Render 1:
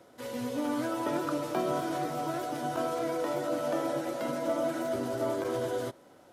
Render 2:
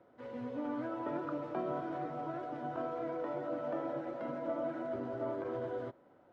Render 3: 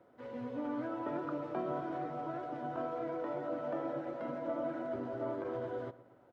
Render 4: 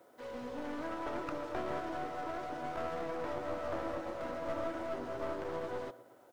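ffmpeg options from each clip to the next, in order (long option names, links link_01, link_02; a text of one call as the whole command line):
ffmpeg -i in.wav -af "lowpass=1800,volume=-6.5dB" out.wav
ffmpeg -i in.wav -filter_complex "[0:a]asplit=2[link_01][link_02];[link_02]adelay=116,lowpass=frequency=1800:poles=1,volume=-16.5dB,asplit=2[link_03][link_04];[link_04]adelay=116,lowpass=frequency=1800:poles=1,volume=0.47,asplit=2[link_05][link_06];[link_06]adelay=116,lowpass=frequency=1800:poles=1,volume=0.47,asplit=2[link_07][link_08];[link_08]adelay=116,lowpass=frequency=1800:poles=1,volume=0.47[link_09];[link_01][link_03][link_05][link_07][link_09]amix=inputs=5:normalize=0" out.wav
ffmpeg -i in.wav -af "bass=frequency=250:gain=-11,treble=frequency=4000:gain=14,aeval=exprs='clip(val(0),-1,0.00447)':channel_layout=same,volume=3.5dB" out.wav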